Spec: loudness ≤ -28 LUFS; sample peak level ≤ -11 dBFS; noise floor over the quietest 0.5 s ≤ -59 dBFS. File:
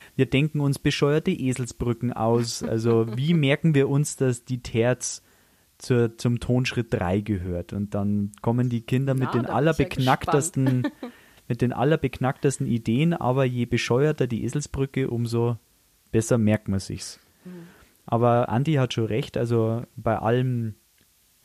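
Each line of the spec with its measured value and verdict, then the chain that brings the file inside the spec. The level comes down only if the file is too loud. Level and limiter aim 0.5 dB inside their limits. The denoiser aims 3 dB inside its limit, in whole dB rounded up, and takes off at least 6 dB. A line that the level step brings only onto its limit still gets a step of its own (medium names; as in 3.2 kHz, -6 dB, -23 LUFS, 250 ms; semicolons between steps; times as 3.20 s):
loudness -24.0 LUFS: fail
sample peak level -6.5 dBFS: fail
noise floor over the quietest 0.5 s -62 dBFS: pass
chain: trim -4.5 dB; peak limiter -11.5 dBFS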